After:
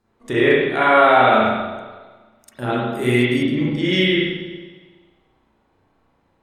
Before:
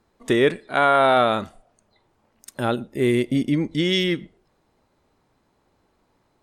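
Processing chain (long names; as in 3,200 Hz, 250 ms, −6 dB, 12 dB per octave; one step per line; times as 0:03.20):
0:02.92–0:03.43: high-shelf EQ 3,400 Hz +10.5 dB
spring reverb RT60 1.4 s, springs 32/41 ms, chirp 80 ms, DRR −8.5 dB
dynamic equaliser 2,200 Hz, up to +5 dB, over −25 dBFS, Q 1.2
level −6 dB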